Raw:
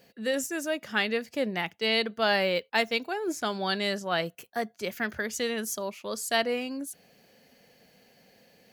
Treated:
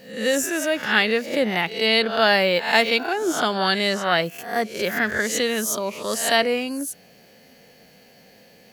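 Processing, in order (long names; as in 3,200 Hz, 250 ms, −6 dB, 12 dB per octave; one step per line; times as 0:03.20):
peak hold with a rise ahead of every peak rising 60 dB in 0.50 s
level +6.5 dB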